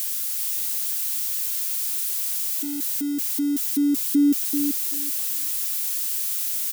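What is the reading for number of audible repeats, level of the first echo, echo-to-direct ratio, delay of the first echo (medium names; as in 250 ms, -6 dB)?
2, -6.0 dB, -6.0 dB, 386 ms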